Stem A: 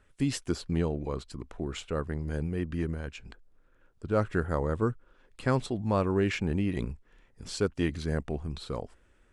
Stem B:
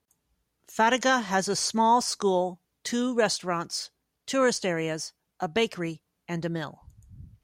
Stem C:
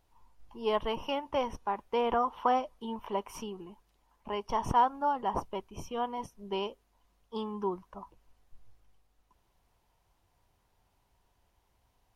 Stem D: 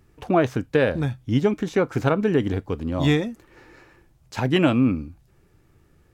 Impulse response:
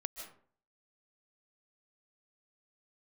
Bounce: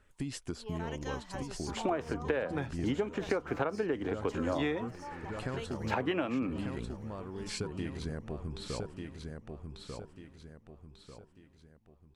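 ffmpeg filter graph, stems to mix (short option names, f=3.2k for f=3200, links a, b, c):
-filter_complex "[0:a]acompressor=threshold=-32dB:ratio=6,volume=-2dB,asplit=2[a][b];[b]volume=-5dB[c];[1:a]volume=-14.5dB,asplit=2[d][e];[e]volume=-19dB[f];[2:a]volume=-16.5dB,asplit=3[g][h][i];[h]volume=-10dB[j];[3:a]acrossover=split=300 3000:gain=0.2 1 0.178[k][l][m];[k][l][m]amix=inputs=3:normalize=0,dynaudnorm=f=480:g=3:m=5dB,adelay=1550,volume=-2dB[n];[i]apad=whole_len=327678[o];[d][o]sidechaincompress=threshold=-47dB:ratio=8:attack=7.5:release=1090[p];[c][f][j]amix=inputs=3:normalize=0,aecho=0:1:1193|2386|3579|4772|5965:1|0.39|0.152|0.0593|0.0231[q];[a][p][g][n][q]amix=inputs=5:normalize=0,acompressor=threshold=-28dB:ratio=12"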